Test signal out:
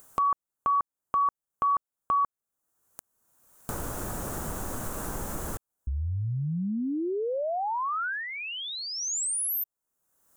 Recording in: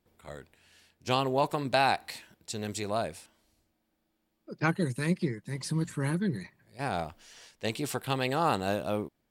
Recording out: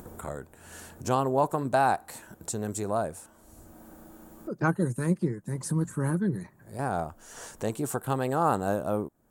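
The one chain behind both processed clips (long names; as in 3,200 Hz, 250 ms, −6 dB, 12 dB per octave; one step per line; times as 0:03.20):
flat-topped bell 3,200 Hz −14.5 dB
upward compression, threshold −30 dBFS
level +2.5 dB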